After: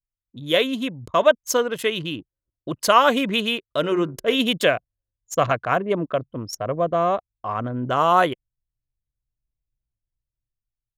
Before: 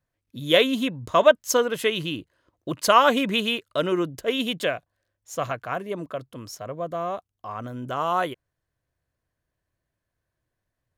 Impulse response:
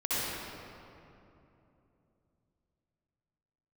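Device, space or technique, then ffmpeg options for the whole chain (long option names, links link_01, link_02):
voice memo with heavy noise removal: -filter_complex "[0:a]asettb=1/sr,asplit=3[link_01][link_02][link_03];[link_01]atrim=end=3.794[link_04];[link_02]atrim=start=3.79:end=4.35,asetpts=PTS-STARTPTS,afade=type=in:duration=0.004:curve=qsin,afade=type=out:start_time=0.556:duration=0.004:curve=qsin,bandreject=frequency=92.31:width_type=h:width=4,bandreject=frequency=184.62:width_type=h:width=4,bandreject=frequency=276.93:width_type=h:width=4,bandreject=frequency=369.24:width_type=h:width=4,bandreject=frequency=461.55:width_type=h:width=4,bandreject=frequency=553.86:width_type=h:width=4,bandreject=frequency=646.17:width_type=h:width=4,bandreject=frequency=738.48:width_type=h:width=4,bandreject=frequency=830.79:width_type=h:width=4,bandreject=frequency=923.1:width_type=h:width=4,bandreject=frequency=1015.41:width_type=h:width=4,bandreject=frequency=1107.72:width_type=h:width=4,bandreject=frequency=1200.03:width_type=h:width=4,bandreject=frequency=1292.34:width_type=h:width=4,bandreject=frequency=1384.65:width_type=h:width=4,bandreject=frequency=1476.96:width_type=h:width=4,bandreject=frequency=1569.27:width_type=h:width=4,bandreject=frequency=1661.58:width_type=h:width=4,bandreject=frequency=1753.89:width_type=h:width=4,bandreject=frequency=1846.2:width_type=h:width=4,bandreject=frequency=1938.51:width_type=h:width=4,bandreject=frequency=2030.82:width_type=h:width=4,bandreject=frequency=2123.13:width_type=h:width=4,bandreject=frequency=2215.44:width_type=h:width=4,bandreject=frequency=2307.75:width_type=h:width=4,bandreject=frequency=2400.06:width_type=h:width=4,bandreject=frequency=2492.37:width_type=h:width=4[link_05];[link_03]atrim=start=4.346[link_06];[link_04][link_05]acrossfade=duration=0.004:curve1=hsin:curve2=qsin[link_07];[link_07][link_06]acrossfade=duration=0.004:curve1=qsin:curve2=hsin,anlmdn=1.58,dynaudnorm=framelen=320:gausssize=7:maxgain=11.5dB,volume=-1.5dB"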